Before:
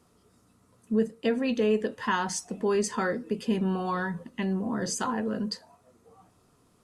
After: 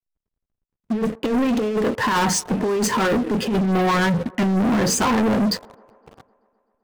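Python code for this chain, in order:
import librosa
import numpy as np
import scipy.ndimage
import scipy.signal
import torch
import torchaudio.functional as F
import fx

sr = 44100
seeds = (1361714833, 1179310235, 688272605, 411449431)

y = fx.high_shelf(x, sr, hz=3000.0, db=-7.5)
y = fx.over_compress(y, sr, threshold_db=-29.0, ratio=-0.5)
y = fx.backlash(y, sr, play_db=-47.5)
y = fx.leveller(y, sr, passes=5)
y = fx.echo_wet_bandpass(y, sr, ms=128, feedback_pct=72, hz=670.0, wet_db=-23.5)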